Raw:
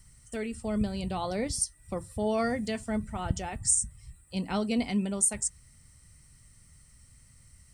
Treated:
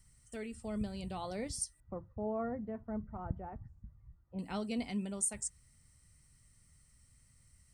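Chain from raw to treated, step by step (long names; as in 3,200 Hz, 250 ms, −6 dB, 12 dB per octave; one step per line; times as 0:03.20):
0:01.80–0:04.39: low-pass filter 1,300 Hz 24 dB per octave
level −8.5 dB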